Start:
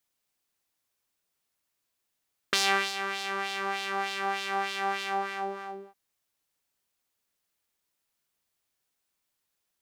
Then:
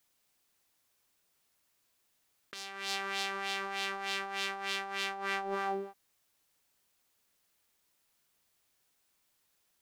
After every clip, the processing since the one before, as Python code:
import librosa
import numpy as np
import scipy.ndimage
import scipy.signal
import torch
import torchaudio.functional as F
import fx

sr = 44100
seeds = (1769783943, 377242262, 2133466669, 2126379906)

y = fx.over_compress(x, sr, threshold_db=-38.0, ratio=-1.0)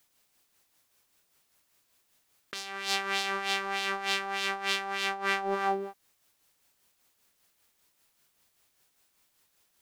y = x * (1.0 - 0.45 / 2.0 + 0.45 / 2.0 * np.cos(2.0 * np.pi * 5.1 * (np.arange(len(x)) / sr)))
y = y * librosa.db_to_amplitude(7.0)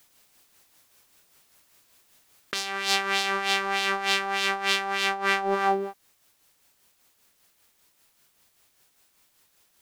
y = fx.rider(x, sr, range_db=3, speed_s=0.5)
y = y * librosa.db_to_amplitude(6.0)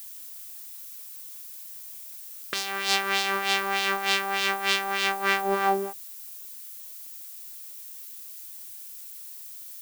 y = fx.dmg_noise_colour(x, sr, seeds[0], colour='violet', level_db=-42.0)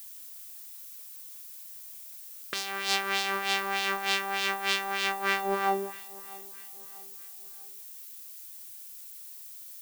y = fx.echo_feedback(x, sr, ms=644, feedback_pct=43, wet_db=-21.0)
y = y * librosa.db_to_amplitude(-3.5)